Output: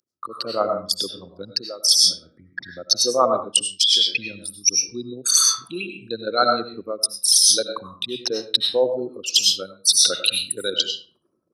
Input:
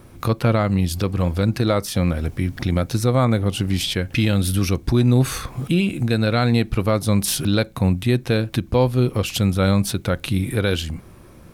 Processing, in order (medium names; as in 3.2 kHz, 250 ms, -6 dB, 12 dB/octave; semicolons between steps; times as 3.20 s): resonances exaggerated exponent 3; high-pass 1.2 kHz 12 dB/octave; on a send at -4.5 dB: reverberation RT60 0.45 s, pre-delay 60 ms; on the sum: level rider gain up to 11 dB; resonant high shelf 3.6 kHz +13 dB, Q 3; reverse; compression 16:1, threshold -16 dBFS, peak gain reduction 23 dB; reverse; three bands expanded up and down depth 40%; trim +2 dB